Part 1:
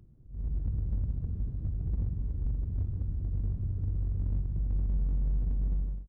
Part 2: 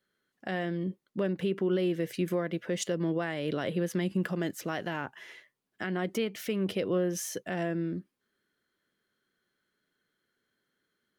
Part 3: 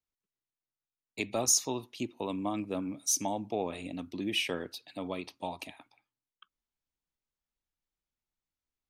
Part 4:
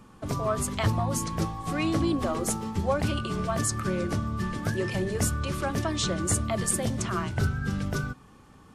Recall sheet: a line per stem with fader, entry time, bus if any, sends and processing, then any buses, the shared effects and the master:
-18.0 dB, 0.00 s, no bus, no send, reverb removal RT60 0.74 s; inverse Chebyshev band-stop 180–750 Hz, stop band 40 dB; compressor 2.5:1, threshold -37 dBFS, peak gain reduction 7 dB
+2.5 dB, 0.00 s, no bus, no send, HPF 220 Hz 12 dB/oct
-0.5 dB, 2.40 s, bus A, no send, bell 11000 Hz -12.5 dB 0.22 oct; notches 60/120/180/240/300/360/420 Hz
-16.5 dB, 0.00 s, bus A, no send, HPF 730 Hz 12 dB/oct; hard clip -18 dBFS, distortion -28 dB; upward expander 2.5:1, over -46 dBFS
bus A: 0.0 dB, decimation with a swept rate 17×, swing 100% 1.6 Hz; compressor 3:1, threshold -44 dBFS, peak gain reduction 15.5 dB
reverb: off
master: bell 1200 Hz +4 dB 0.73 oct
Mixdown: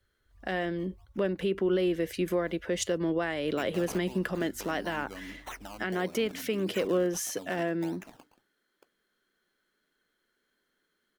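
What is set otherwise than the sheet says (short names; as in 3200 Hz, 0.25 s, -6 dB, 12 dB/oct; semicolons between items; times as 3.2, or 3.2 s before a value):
stem 4 -16.5 dB -> -25.5 dB; master: missing bell 1200 Hz +4 dB 0.73 oct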